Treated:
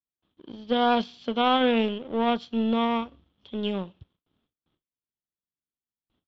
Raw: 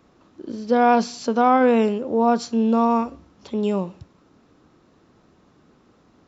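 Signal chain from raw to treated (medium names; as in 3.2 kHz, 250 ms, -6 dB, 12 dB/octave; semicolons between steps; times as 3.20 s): gate with hold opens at -45 dBFS; bass shelf 140 Hz +11.5 dB; power-law waveshaper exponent 1.4; resonant low-pass 3.3 kHz, resonance Q 9.5; trim -5.5 dB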